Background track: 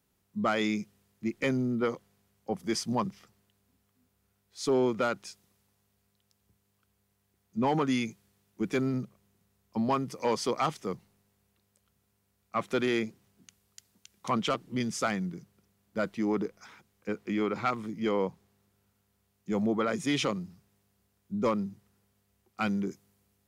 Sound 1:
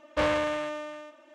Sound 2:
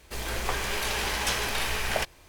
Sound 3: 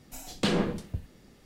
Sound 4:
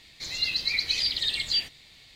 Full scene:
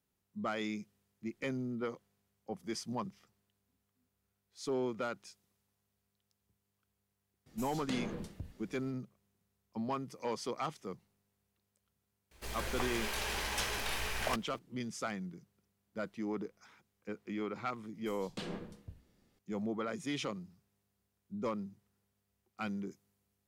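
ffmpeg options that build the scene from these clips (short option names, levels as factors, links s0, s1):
-filter_complex "[3:a]asplit=2[s0][s1];[0:a]volume=0.355[s2];[s0]acompressor=threshold=0.0316:ratio=6:attack=3.2:release=140:knee=1:detection=peak[s3];[s1]bandreject=f=68.62:t=h:w=4,bandreject=f=137.24:t=h:w=4,bandreject=f=205.86:t=h:w=4,bandreject=f=274.48:t=h:w=4,bandreject=f=343.1:t=h:w=4,bandreject=f=411.72:t=h:w=4,bandreject=f=480.34:t=h:w=4,bandreject=f=548.96:t=h:w=4,bandreject=f=617.58:t=h:w=4,bandreject=f=686.2:t=h:w=4,bandreject=f=754.82:t=h:w=4,bandreject=f=823.44:t=h:w=4,bandreject=f=892.06:t=h:w=4,bandreject=f=960.68:t=h:w=4,bandreject=f=1029.3:t=h:w=4,bandreject=f=1097.92:t=h:w=4,bandreject=f=1166.54:t=h:w=4,bandreject=f=1235.16:t=h:w=4,bandreject=f=1303.78:t=h:w=4,bandreject=f=1372.4:t=h:w=4,bandreject=f=1441.02:t=h:w=4,bandreject=f=1509.64:t=h:w=4,bandreject=f=1578.26:t=h:w=4,bandreject=f=1646.88:t=h:w=4,bandreject=f=1715.5:t=h:w=4,bandreject=f=1784.12:t=h:w=4,bandreject=f=1852.74:t=h:w=4,bandreject=f=1921.36:t=h:w=4,bandreject=f=1989.98:t=h:w=4[s4];[s3]atrim=end=1.45,asetpts=PTS-STARTPTS,volume=0.501,afade=t=in:d=0.004:c=hsin,afade=t=out:st=1.446:d=0.004:c=hsin,adelay=328986S[s5];[2:a]atrim=end=2.28,asetpts=PTS-STARTPTS,volume=0.398,afade=t=in:d=0.004:c=hsin,afade=t=out:st=2.276:d=0.004:c=hsin,adelay=12310[s6];[s4]atrim=end=1.45,asetpts=PTS-STARTPTS,volume=0.178,afade=t=in:d=0.004:c=hsin,afade=t=out:st=1.446:d=0.004:c=hsin,adelay=17940[s7];[s2][s5][s6][s7]amix=inputs=4:normalize=0"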